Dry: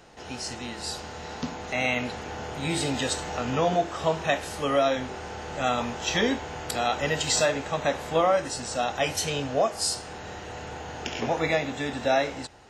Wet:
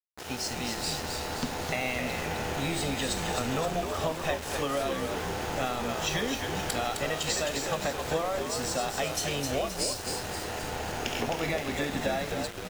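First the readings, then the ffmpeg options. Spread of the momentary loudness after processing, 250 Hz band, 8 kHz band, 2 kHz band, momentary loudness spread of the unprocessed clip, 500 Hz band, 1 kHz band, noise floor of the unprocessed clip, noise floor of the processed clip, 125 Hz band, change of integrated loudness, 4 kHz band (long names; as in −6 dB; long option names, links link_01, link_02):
4 LU, −2.5 dB, −1.5 dB, −3.0 dB, 12 LU, −4.5 dB, −4.0 dB, −40 dBFS, −38 dBFS, −1.0 dB, −3.5 dB, −2.0 dB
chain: -filter_complex "[0:a]acompressor=threshold=-30dB:ratio=10,asplit=8[link_01][link_02][link_03][link_04][link_05][link_06][link_07][link_08];[link_02]adelay=261,afreqshift=-85,volume=-5dB[link_09];[link_03]adelay=522,afreqshift=-170,volume=-10.7dB[link_10];[link_04]adelay=783,afreqshift=-255,volume=-16.4dB[link_11];[link_05]adelay=1044,afreqshift=-340,volume=-22dB[link_12];[link_06]adelay=1305,afreqshift=-425,volume=-27.7dB[link_13];[link_07]adelay=1566,afreqshift=-510,volume=-33.4dB[link_14];[link_08]adelay=1827,afreqshift=-595,volume=-39.1dB[link_15];[link_01][link_09][link_10][link_11][link_12][link_13][link_14][link_15]amix=inputs=8:normalize=0,aeval=exprs='val(0)*gte(abs(val(0)),0.0119)':channel_layout=same,volume=2.5dB"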